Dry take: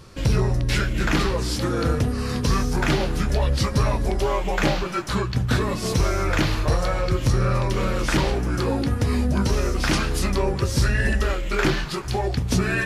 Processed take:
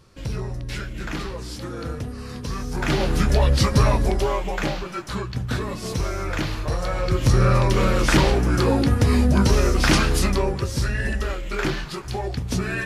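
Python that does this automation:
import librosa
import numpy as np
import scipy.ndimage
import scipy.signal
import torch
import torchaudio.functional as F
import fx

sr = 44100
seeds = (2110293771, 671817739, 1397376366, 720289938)

y = fx.gain(x, sr, db=fx.line((2.55, -8.5), (3.13, 3.5), (3.98, 3.5), (4.68, -4.5), (6.69, -4.5), (7.41, 4.0), (10.13, 4.0), (10.72, -3.5)))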